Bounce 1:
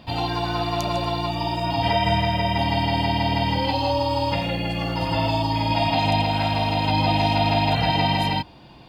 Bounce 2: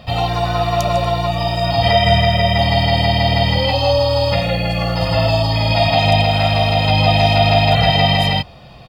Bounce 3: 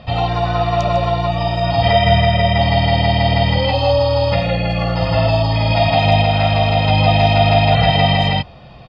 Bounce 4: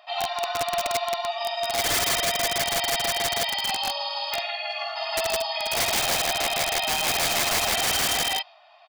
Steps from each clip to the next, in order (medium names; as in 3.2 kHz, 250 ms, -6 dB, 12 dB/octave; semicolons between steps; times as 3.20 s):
comb 1.6 ms, depth 69%; trim +5.5 dB
distance through air 150 m; trim +1 dB
dynamic bell 4.2 kHz, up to +7 dB, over -36 dBFS, Q 0.85; brick-wall FIR high-pass 590 Hz; integer overflow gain 9.5 dB; trim -8.5 dB